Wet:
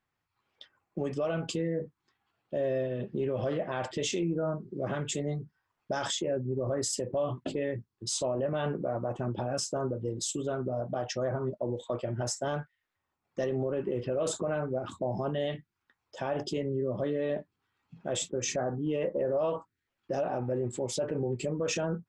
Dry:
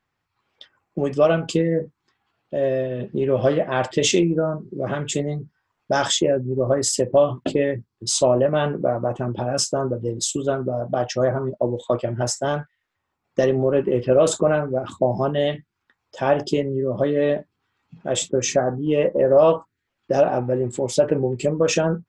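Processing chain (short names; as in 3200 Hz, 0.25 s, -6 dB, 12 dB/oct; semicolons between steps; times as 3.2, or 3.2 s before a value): limiter -16 dBFS, peak gain reduction 10.5 dB; gain -6.5 dB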